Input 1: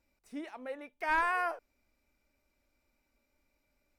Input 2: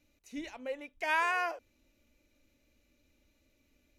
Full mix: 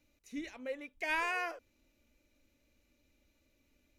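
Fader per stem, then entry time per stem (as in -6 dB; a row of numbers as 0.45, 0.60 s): -9.5, -2.0 dB; 0.00, 0.00 s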